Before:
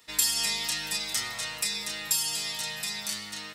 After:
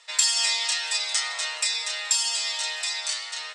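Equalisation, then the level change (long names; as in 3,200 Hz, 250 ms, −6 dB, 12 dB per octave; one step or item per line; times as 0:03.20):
inverse Chebyshev high-pass filter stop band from 280 Hz, stop band 40 dB
elliptic low-pass filter 8,400 Hz, stop band 70 dB
+5.5 dB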